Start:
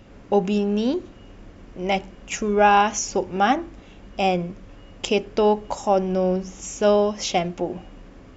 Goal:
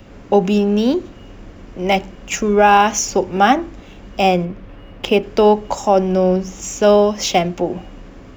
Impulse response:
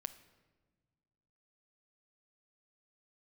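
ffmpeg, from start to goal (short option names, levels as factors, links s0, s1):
-filter_complex "[0:a]asettb=1/sr,asplit=3[s0][s1][s2];[s0]atrim=end=4.454[s3];[s1]atrim=start=4.45:end=5.23,asetpts=PTS-STARTPTS,afade=t=in:d=0.004:c=qsin,afade=t=out:st=0.776:d=0.004:c=qsin,lowpass=3300[s4];[s2]atrim=start=5.226[s5];[s3][s4]acrossfade=d=0.004:c1=hsin:c2=qsin[s6];[s6][s5]acrossfade=d=0.004:c1=qsin:c2=hsin,acrossover=split=280|420|2500[s7][s8][s9][s10];[s10]acrusher=bits=4:mode=log:mix=0:aa=0.000001[s11];[s7][s8][s9][s11]amix=inputs=4:normalize=0,alimiter=level_in=2.37:limit=0.891:release=50:level=0:latency=1,volume=0.891"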